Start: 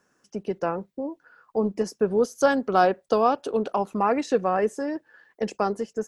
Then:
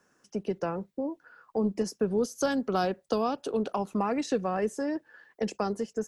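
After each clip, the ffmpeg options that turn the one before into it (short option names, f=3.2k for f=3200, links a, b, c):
-filter_complex "[0:a]acrossover=split=270|3000[a][b][c];[b]acompressor=threshold=-31dB:ratio=2.5[d];[a][d][c]amix=inputs=3:normalize=0"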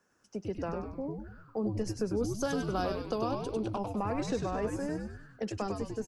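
-filter_complex "[0:a]asplit=7[a][b][c][d][e][f][g];[b]adelay=99,afreqshift=-110,volume=-4dB[h];[c]adelay=198,afreqshift=-220,volume=-10dB[i];[d]adelay=297,afreqshift=-330,volume=-16dB[j];[e]adelay=396,afreqshift=-440,volume=-22.1dB[k];[f]adelay=495,afreqshift=-550,volume=-28.1dB[l];[g]adelay=594,afreqshift=-660,volume=-34.1dB[m];[a][h][i][j][k][l][m]amix=inputs=7:normalize=0,volume=-5.5dB"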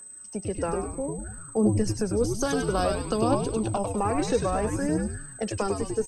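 -af "aeval=exprs='val(0)+0.00355*sin(2*PI*8200*n/s)':c=same,aphaser=in_gain=1:out_gain=1:delay=2.8:decay=0.4:speed=0.6:type=triangular,volume=6.5dB"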